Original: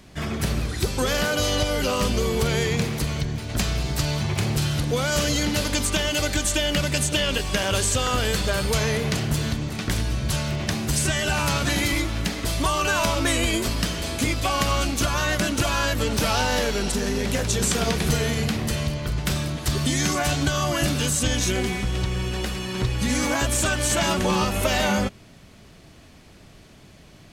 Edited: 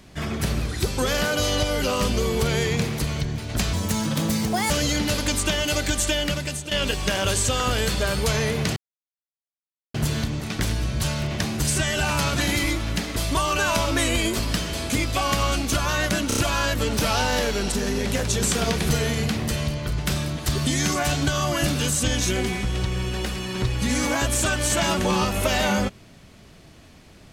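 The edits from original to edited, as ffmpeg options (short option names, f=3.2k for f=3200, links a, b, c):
-filter_complex "[0:a]asplit=8[a][b][c][d][e][f][g][h];[a]atrim=end=3.734[i];[b]atrim=start=3.73:end=5.17,asetpts=PTS-STARTPTS,asetrate=65268,aresample=44100,atrim=end_sample=42908,asetpts=PTS-STARTPTS[j];[c]atrim=start=5.166:end=7.18,asetpts=PTS-STARTPTS,afade=t=out:st=1.424:d=0.59:silence=0.237137[k];[d]atrim=start=7.18:end=9.23,asetpts=PTS-STARTPTS,afade=t=in:d=0.004:c=hsin:silence=0.237137,afade=t=out:st=2.046:d=0.004:c=hsin,apad=pad_dur=1.18[l];[e]atrim=start=9.23:end=15.602,asetpts=PTS-STARTPTS,afade=t=in:d=0.004:c=hsin[m];[f]atrim=start=15.568:end=15.602[n];[g]atrim=start=15.568:end=15.602[o];[h]atrim=start=15.568[p];[i][j]acrossfade=d=0.004:c1=hsin:c2=hsin[q];[k][l][m]concat=n=3:v=0:a=1[r];[q][r]acrossfade=d=0.004:c1=hsin:c2=hsin[s];[s][n]acrossfade=d=0.004:c1=hsin:c2=hsin[t];[t][o]acrossfade=d=0.004:c1=hsin:c2=hsin[u];[u][p]acrossfade=d=0.004:c1=hsin:c2=hsin"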